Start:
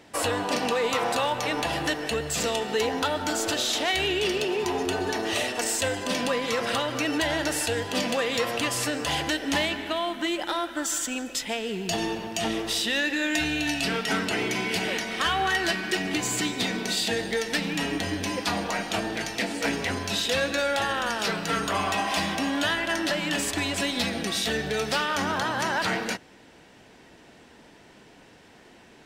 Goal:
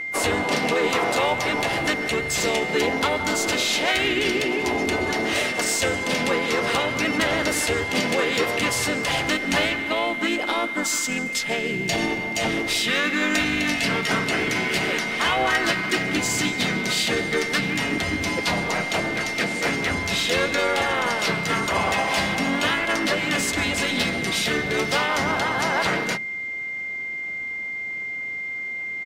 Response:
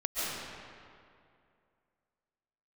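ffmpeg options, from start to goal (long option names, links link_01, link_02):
-filter_complex "[0:a]bandreject=frequency=70.88:width_type=h:width=4,bandreject=frequency=141.76:width_type=h:width=4,bandreject=frequency=212.64:width_type=h:width=4,bandreject=frequency=283.52:width_type=h:width=4,bandreject=frequency=354.4:width_type=h:width=4,bandreject=frequency=425.28:width_type=h:width=4,asplit=4[link_01][link_02][link_03][link_04];[link_02]asetrate=29433,aresample=44100,atempo=1.49831,volume=-7dB[link_05];[link_03]asetrate=37084,aresample=44100,atempo=1.18921,volume=-5dB[link_06];[link_04]asetrate=55563,aresample=44100,atempo=0.793701,volume=-17dB[link_07];[link_01][link_05][link_06][link_07]amix=inputs=4:normalize=0,aeval=exprs='val(0)+0.0355*sin(2*PI*2100*n/s)':channel_layout=same,volume=1.5dB"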